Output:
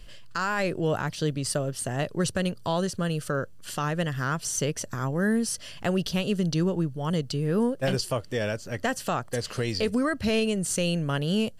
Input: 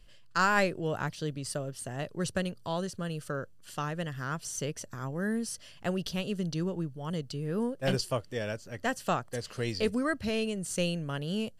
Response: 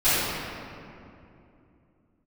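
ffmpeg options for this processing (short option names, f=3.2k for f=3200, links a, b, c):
-filter_complex "[0:a]asplit=2[a][b];[b]acompressor=threshold=-45dB:ratio=6,volume=-2.5dB[c];[a][c]amix=inputs=2:normalize=0,alimiter=limit=-22.5dB:level=0:latency=1:release=81,volume=6dB"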